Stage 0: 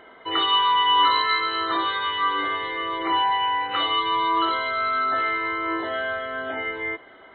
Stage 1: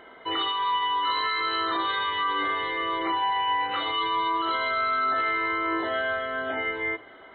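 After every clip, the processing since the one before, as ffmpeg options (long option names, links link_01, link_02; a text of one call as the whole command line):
ffmpeg -i in.wav -af "alimiter=limit=-18.5dB:level=0:latency=1:release=10,bandreject=frequency=105.9:width_type=h:width=4,bandreject=frequency=211.8:width_type=h:width=4,bandreject=frequency=317.7:width_type=h:width=4,bandreject=frequency=423.6:width_type=h:width=4,bandreject=frequency=529.5:width_type=h:width=4,bandreject=frequency=635.4:width_type=h:width=4,bandreject=frequency=741.3:width_type=h:width=4,bandreject=frequency=847.2:width_type=h:width=4,bandreject=frequency=953.1:width_type=h:width=4,bandreject=frequency=1059:width_type=h:width=4,bandreject=frequency=1164.9:width_type=h:width=4,bandreject=frequency=1270.8:width_type=h:width=4,bandreject=frequency=1376.7:width_type=h:width=4,bandreject=frequency=1482.6:width_type=h:width=4,bandreject=frequency=1588.5:width_type=h:width=4,bandreject=frequency=1694.4:width_type=h:width=4,bandreject=frequency=1800.3:width_type=h:width=4,bandreject=frequency=1906.2:width_type=h:width=4,bandreject=frequency=2012.1:width_type=h:width=4,bandreject=frequency=2118:width_type=h:width=4,bandreject=frequency=2223.9:width_type=h:width=4,bandreject=frequency=2329.8:width_type=h:width=4,bandreject=frequency=2435.7:width_type=h:width=4,bandreject=frequency=2541.6:width_type=h:width=4,bandreject=frequency=2647.5:width_type=h:width=4,bandreject=frequency=2753.4:width_type=h:width=4,bandreject=frequency=2859.3:width_type=h:width=4,bandreject=frequency=2965.2:width_type=h:width=4,bandreject=frequency=3071.1:width_type=h:width=4" out.wav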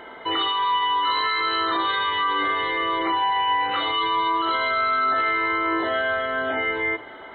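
ffmpeg -i in.wav -filter_complex "[0:a]asplit=2[link_01][link_02];[link_02]alimiter=level_in=3dB:limit=-24dB:level=0:latency=1,volume=-3dB,volume=2.5dB[link_03];[link_01][link_03]amix=inputs=2:normalize=0,aeval=exprs='val(0)+0.00355*sin(2*PI*880*n/s)':channel_layout=same" out.wav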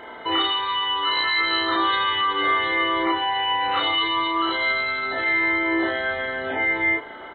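ffmpeg -i in.wav -filter_complex "[0:a]asplit=2[link_01][link_02];[link_02]adelay=33,volume=-2.5dB[link_03];[link_01][link_03]amix=inputs=2:normalize=0" out.wav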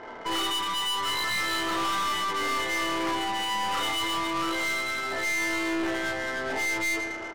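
ffmpeg -i in.wav -af "aecho=1:1:112|224|336|448|560|672|784:0.299|0.176|0.104|0.0613|0.0362|0.0213|0.0126,aeval=exprs='(tanh(17.8*val(0)+0.3)-tanh(0.3))/17.8':channel_layout=same,adynamicsmooth=sensitivity=6.5:basefreq=1200" out.wav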